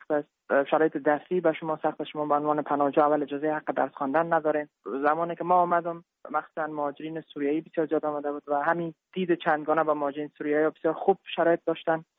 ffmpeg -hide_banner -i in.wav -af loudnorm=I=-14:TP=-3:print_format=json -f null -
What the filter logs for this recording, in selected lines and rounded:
"input_i" : "-27.0",
"input_tp" : "-8.7",
"input_lra" : "1.6",
"input_thresh" : "-37.0",